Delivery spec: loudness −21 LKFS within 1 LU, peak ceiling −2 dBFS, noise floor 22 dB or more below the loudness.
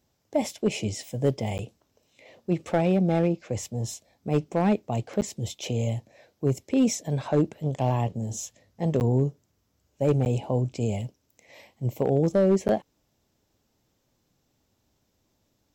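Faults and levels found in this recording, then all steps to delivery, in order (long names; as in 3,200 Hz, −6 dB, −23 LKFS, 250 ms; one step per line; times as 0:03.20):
share of clipped samples 0.4%; peaks flattened at −14.5 dBFS; number of dropouts 5; longest dropout 9.6 ms; integrated loudness −27.0 LKFS; sample peak −14.5 dBFS; target loudness −21.0 LKFS
→ clipped peaks rebuilt −14.5 dBFS
repair the gap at 0:01.58/0:05.21/0:09.00/0:10.25/0:12.68, 9.6 ms
level +6 dB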